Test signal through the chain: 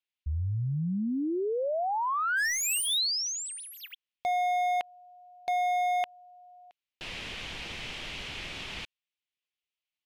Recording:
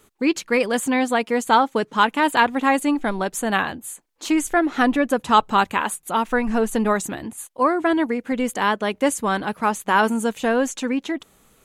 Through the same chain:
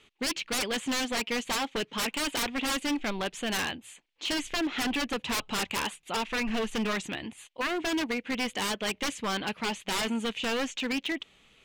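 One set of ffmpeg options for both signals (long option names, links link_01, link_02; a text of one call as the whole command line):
ffmpeg -i in.wav -af "aexciter=amount=1.1:drive=9.7:freq=2000,lowpass=frequency=3100:width_type=q:width=2.4,aeval=exprs='0.15*(abs(mod(val(0)/0.15+3,4)-2)-1)':channel_layout=same,volume=-7.5dB" out.wav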